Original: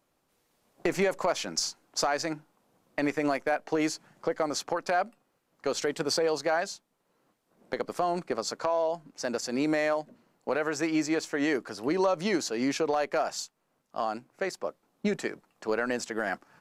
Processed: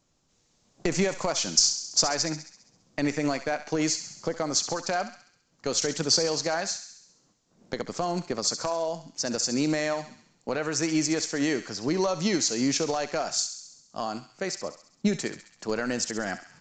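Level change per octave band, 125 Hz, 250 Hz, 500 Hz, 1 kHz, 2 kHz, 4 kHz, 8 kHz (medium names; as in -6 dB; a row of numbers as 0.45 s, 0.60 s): +7.0 dB, +2.5 dB, -1.0 dB, -1.5 dB, -0.5 dB, +8.0 dB, +10.5 dB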